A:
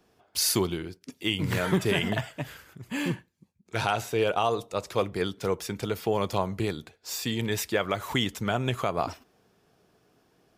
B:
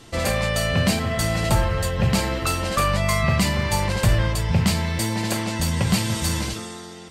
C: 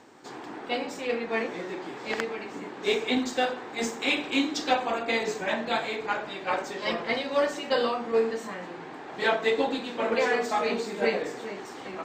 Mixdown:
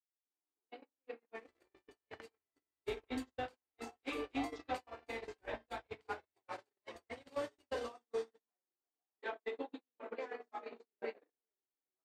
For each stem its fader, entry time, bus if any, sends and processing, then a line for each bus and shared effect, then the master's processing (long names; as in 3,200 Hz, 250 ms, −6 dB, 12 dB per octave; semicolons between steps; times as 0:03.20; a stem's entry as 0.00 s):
−13.0 dB, 0.00 s, no send, pair of resonant band-passes 580 Hz, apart 0.71 octaves
−4.0 dB, 1.35 s, no send, guitar amp tone stack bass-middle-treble 10-0-10; downward compressor 5 to 1, threshold −39 dBFS, peak gain reduction 15.5 dB
−10.0 dB, 0.00 s, no send, low shelf with overshoot 200 Hz −10 dB, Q 3; downward compressor 5 to 1, threshold −23 dBFS, peak gain reduction 8 dB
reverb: not used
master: noise gate −34 dBFS, range −58 dB; mid-hump overdrive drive 10 dB, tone 1,400 Hz, clips at −27 dBFS